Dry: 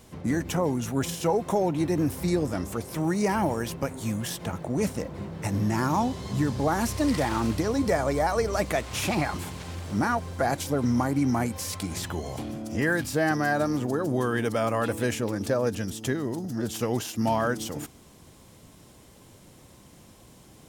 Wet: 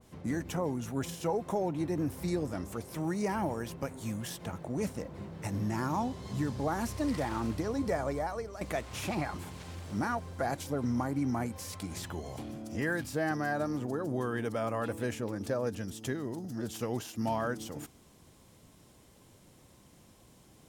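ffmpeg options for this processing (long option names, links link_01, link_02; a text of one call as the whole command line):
ffmpeg -i in.wav -filter_complex "[0:a]asplit=2[link_01][link_02];[link_01]atrim=end=8.61,asetpts=PTS-STARTPTS,afade=type=out:start_time=8.07:duration=0.54:silence=0.237137[link_03];[link_02]atrim=start=8.61,asetpts=PTS-STARTPTS,afade=type=in:duration=0.004:curve=hsin:silence=0.237137[link_04];[link_03][link_04]concat=n=2:v=0:a=1,adynamicequalizer=threshold=0.00891:dfrequency=2000:dqfactor=0.7:tfrequency=2000:tqfactor=0.7:attack=5:release=100:ratio=0.375:range=2:mode=cutabove:tftype=highshelf,volume=-7dB" out.wav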